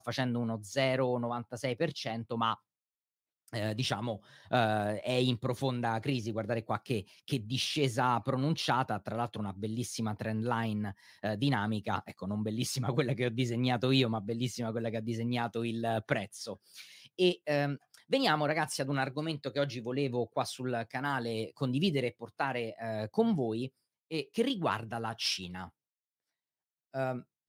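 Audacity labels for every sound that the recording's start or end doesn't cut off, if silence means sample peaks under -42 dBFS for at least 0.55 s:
3.530000	25.670000	sound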